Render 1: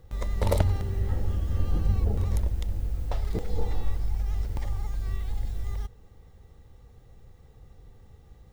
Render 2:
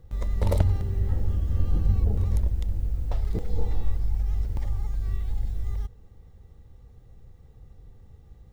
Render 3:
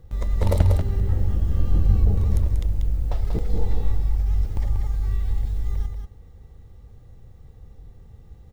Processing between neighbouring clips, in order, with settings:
bass shelf 340 Hz +7 dB; trim -4.5 dB
delay 188 ms -6 dB; trim +3 dB

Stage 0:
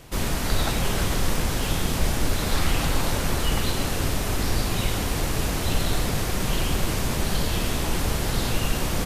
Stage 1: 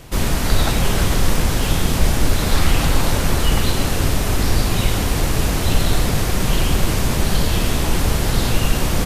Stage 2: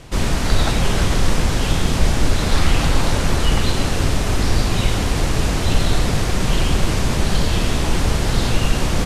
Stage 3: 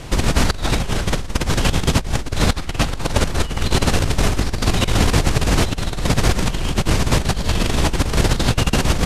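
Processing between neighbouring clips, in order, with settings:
bass shelf 180 Hz +3 dB; trim +5 dB
low-pass 8.5 kHz 12 dB/octave
compressor with a negative ratio -19 dBFS, ratio -0.5; trim +2.5 dB

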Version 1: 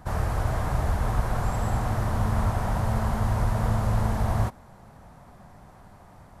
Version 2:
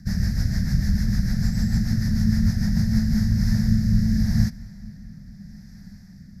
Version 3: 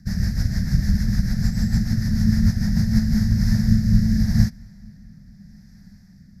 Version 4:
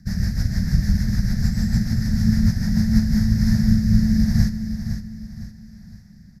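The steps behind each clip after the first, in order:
rotary cabinet horn 6.7 Hz, later 0.8 Hz, at 2.74 s; FFT filter 120 Hz 0 dB, 200 Hz +12 dB, 380 Hz -17 dB, 760 Hz -21 dB, 1.1 kHz -26 dB, 1.8 kHz +2 dB, 3 kHz -16 dB, 5.1 kHz +14 dB, 8.7 kHz -9 dB, 13 kHz +3 dB; feedback echo behind a low-pass 223 ms, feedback 78%, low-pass 3.3 kHz, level -23.5 dB; trim +4.5 dB
upward expansion 1.5:1, over -30 dBFS; trim +4 dB
feedback delay 510 ms, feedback 37%, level -9 dB

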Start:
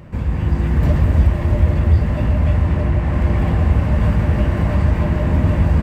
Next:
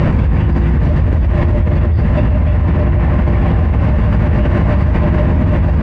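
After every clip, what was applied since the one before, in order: distance through air 130 m; level flattener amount 100%; trim -3 dB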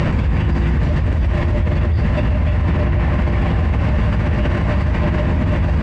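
treble shelf 2 kHz +10 dB; loudness maximiser +4 dB; trim -7.5 dB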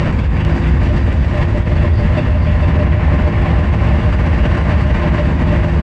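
delay 450 ms -4.5 dB; trim +2.5 dB

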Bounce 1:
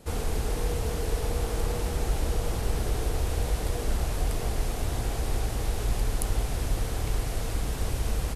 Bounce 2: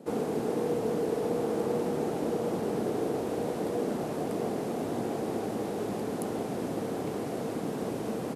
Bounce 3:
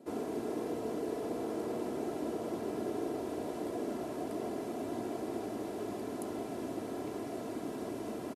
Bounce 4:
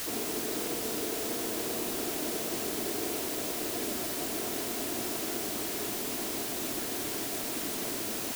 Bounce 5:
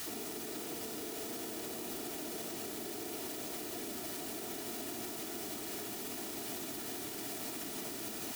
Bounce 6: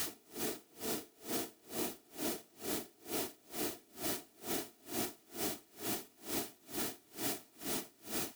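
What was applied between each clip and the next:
high-pass 200 Hz 24 dB/octave; tilt shelf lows +10 dB
comb 3 ms, depth 54%; trim -7 dB
word length cut 6-bit, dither triangular
comb of notches 530 Hz; peak limiter -28 dBFS, peak gain reduction 6.5 dB; trim -4 dB
logarithmic tremolo 2.2 Hz, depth 32 dB; trim +6.5 dB

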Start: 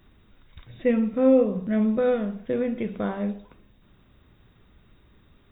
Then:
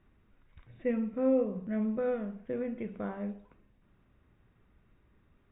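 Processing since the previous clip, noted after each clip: low-pass 2.7 kHz 24 dB/octave; trim -9 dB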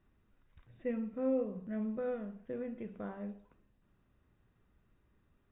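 band-stop 2.2 kHz, Q 14; trim -5.5 dB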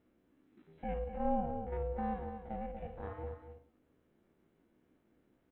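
spectrogram pixelated in time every 50 ms; delay 240 ms -9.5 dB; ring modulator 280 Hz; trim +2.5 dB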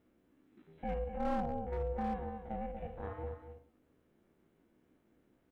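hard clipper -29.5 dBFS, distortion -14 dB; trim +1 dB

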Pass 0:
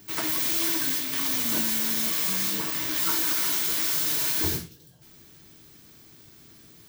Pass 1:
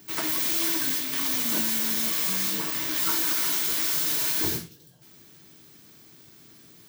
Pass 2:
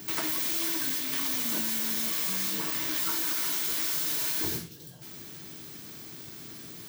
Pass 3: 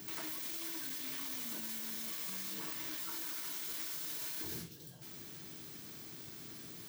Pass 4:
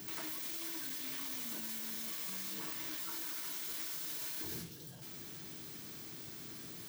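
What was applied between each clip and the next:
high-pass 110 Hz 12 dB/octave
compression 2.5:1, threshold -41 dBFS, peak gain reduction 13 dB; trim +8 dB
peak limiter -26.5 dBFS, peak gain reduction 10 dB; trim -5.5 dB
jump at every zero crossing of -52.5 dBFS; trim -1 dB

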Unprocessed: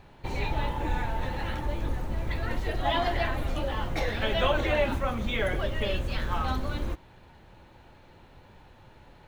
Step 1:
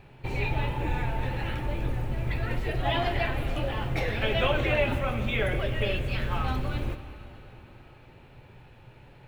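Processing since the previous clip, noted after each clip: graphic EQ with 31 bands 125 Hz +11 dB, 400 Hz +4 dB, 1 kHz -3 dB, 2.5 kHz +7 dB, 4 kHz -3 dB, 6.3 kHz -5 dB; reverberation RT60 3.8 s, pre-delay 5 ms, DRR 10.5 dB; trim -1 dB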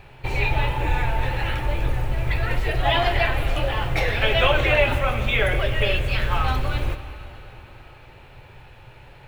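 peaking EQ 220 Hz -10 dB 1.7 oct; trim +8.5 dB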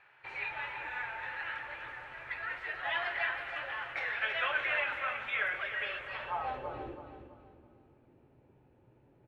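band-pass sweep 1.6 kHz -> 270 Hz, 5.87–7.11 s; feedback delay 328 ms, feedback 34%, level -9 dB; trim -5 dB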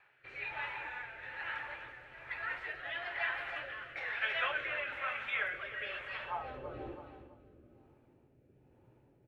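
rotary cabinet horn 1.1 Hz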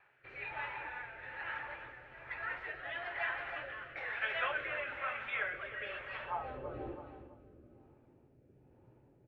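low-pass 1.8 kHz 6 dB/octave; trim +1.5 dB

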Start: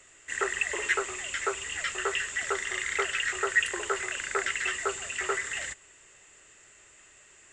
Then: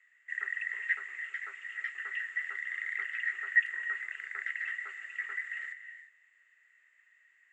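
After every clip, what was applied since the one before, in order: band-pass filter 1.9 kHz, Q 9.6; gated-style reverb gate 380 ms rising, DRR 10.5 dB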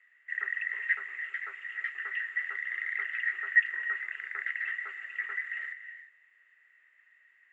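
Bessel low-pass 3 kHz, order 2; trim +3.5 dB

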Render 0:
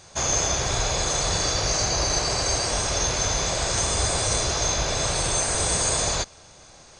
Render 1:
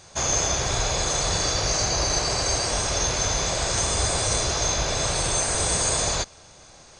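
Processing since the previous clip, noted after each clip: no audible change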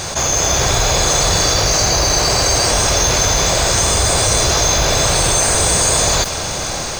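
level rider; modulation noise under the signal 21 dB; level flattener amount 70%; trim -1 dB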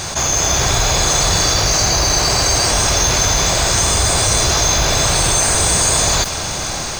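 peaking EQ 510 Hz -4.5 dB 0.61 oct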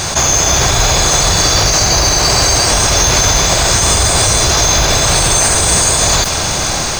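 peak limiter -8 dBFS, peak gain reduction 6 dB; trim +6.5 dB

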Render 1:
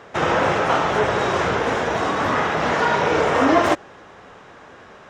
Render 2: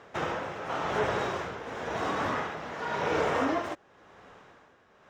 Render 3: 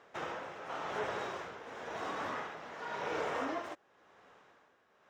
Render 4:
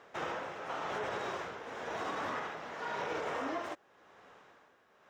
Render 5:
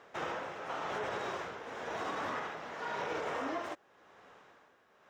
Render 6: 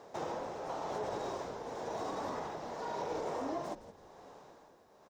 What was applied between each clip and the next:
median filter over 3 samples; tremolo 0.93 Hz, depth 69%; trim -8.5 dB
bass shelf 180 Hz -11 dB; trim -7.5 dB
peak limiter -31 dBFS, peak gain reduction 6.5 dB; trim +3 dB
no audible change
high-order bell 2 kHz -11.5 dB; compression 1.5:1, threshold -50 dBFS, peak gain reduction 6 dB; frequency-shifting echo 166 ms, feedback 32%, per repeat -120 Hz, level -13 dB; trim +6 dB

